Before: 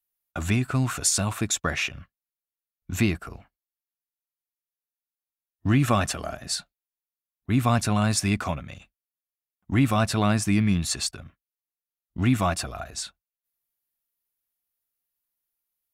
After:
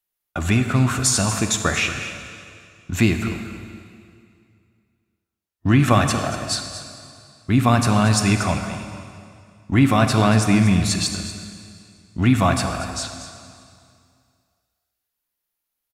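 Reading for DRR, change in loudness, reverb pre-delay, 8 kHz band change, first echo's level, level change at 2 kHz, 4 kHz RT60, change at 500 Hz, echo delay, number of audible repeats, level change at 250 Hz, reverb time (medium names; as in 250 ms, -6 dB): 5.5 dB, +5.5 dB, 25 ms, +4.5 dB, -13.0 dB, +6.5 dB, 2.1 s, +6.5 dB, 234 ms, 1, +6.0 dB, 2.3 s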